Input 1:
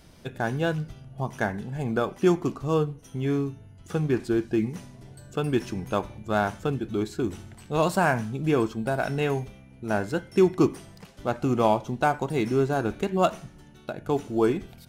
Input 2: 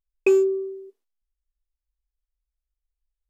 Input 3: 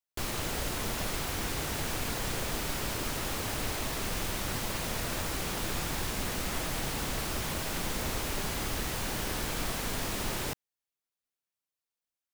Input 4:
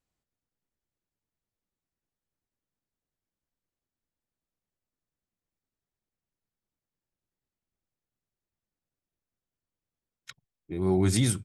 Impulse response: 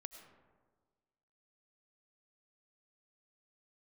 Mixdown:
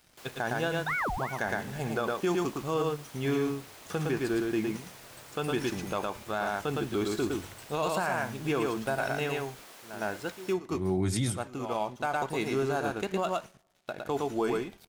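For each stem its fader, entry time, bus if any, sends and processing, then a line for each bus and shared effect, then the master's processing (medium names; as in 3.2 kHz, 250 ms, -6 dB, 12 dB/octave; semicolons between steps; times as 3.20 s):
+0.5 dB, 0.00 s, send -23 dB, echo send -3.5 dB, bass shelf 410 Hz -10 dB; gain riding within 3 dB 0.5 s; crossover distortion -54 dBFS; auto duck -23 dB, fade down 1.15 s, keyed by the fourth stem
-4.0 dB, 0.60 s, no send, no echo send, peak limiter -19.5 dBFS, peak gain reduction 11 dB; ring modulator with a swept carrier 1.1 kHz, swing 70%, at 2.8 Hz
-14.5 dB, 0.00 s, no send, no echo send, high-pass 370 Hz 12 dB/octave
-4.0 dB, 0.00 s, no send, echo send -20 dB, none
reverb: on, RT60 1.5 s, pre-delay 60 ms
echo: delay 111 ms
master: hard clipper -13 dBFS, distortion -36 dB; peak limiter -19.5 dBFS, peak gain reduction 6.5 dB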